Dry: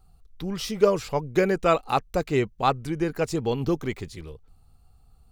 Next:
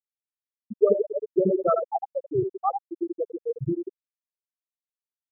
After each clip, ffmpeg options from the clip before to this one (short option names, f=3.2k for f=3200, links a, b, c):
-af "aecho=1:1:80|172|277.8|399.5|539.4:0.631|0.398|0.251|0.158|0.1,afftfilt=real='re*gte(hypot(re,im),0.562)':imag='im*gte(hypot(re,im),0.562)':win_size=1024:overlap=0.75"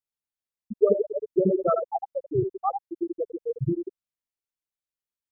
-af "lowshelf=f=150:g=9,volume=-1.5dB"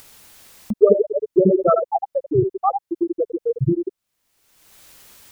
-af "acompressor=mode=upward:threshold=-25dB:ratio=2.5,volume=7dB"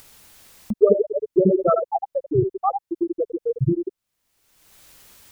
-af "lowshelf=f=130:g=4,volume=-2.5dB"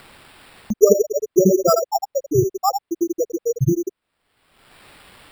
-af "acrusher=samples=7:mix=1:aa=0.000001,volume=2.5dB"